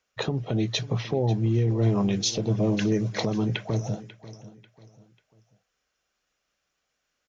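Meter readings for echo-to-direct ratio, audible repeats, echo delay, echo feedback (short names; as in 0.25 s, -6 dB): -16.5 dB, 3, 0.542 s, 36%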